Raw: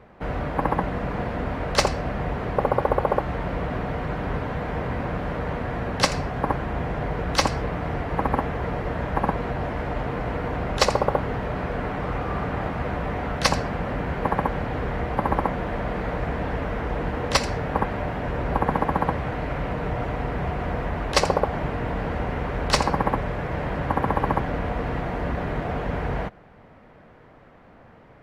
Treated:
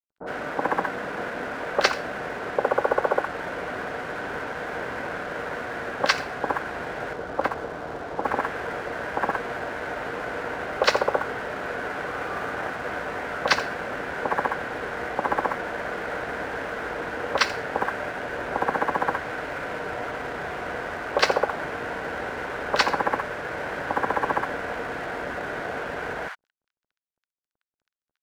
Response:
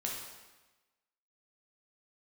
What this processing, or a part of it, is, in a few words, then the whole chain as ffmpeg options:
pocket radio on a weak battery: -filter_complex "[0:a]asettb=1/sr,asplit=3[s0][s1][s2];[s0]atrim=end=7.074[s3];[s1]atrim=start=7.07:end=8.2,asetpts=PTS-STARTPTS,afade=t=in:d=0.004:c=qsin,afade=t=out:st=1.126:d=0.004:c=qsin,lowpass=1200[s4];[s2]atrim=start=8.196[s5];[s3][s4]acrossfade=d=0.004:c1=hsin:c2=qsin[s6];[s6][s5]acrossfade=d=0.004:c1=qsin:c2=hsin,asubboost=boost=4.5:cutoff=76,highpass=320,lowpass=4400,aeval=exprs='sgn(val(0))*max(abs(val(0))-0.00631,0)':c=same,equalizer=f=1500:t=o:w=0.3:g=9,acrossover=split=980[s7][s8];[s8]adelay=60[s9];[s7][s9]amix=inputs=2:normalize=0,volume=1.26"

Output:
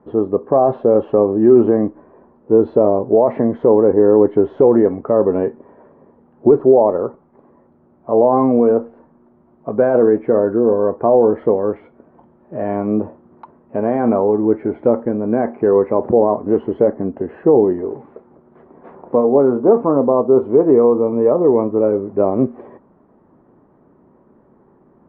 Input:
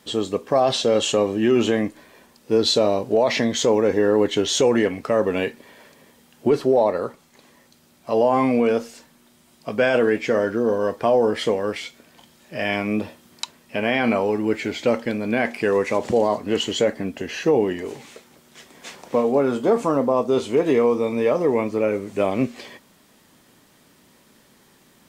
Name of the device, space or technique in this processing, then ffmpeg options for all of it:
under water: -af "lowpass=f=1100:w=0.5412,lowpass=f=1100:w=1.3066,equalizer=f=370:t=o:w=0.46:g=5,volume=1.68"

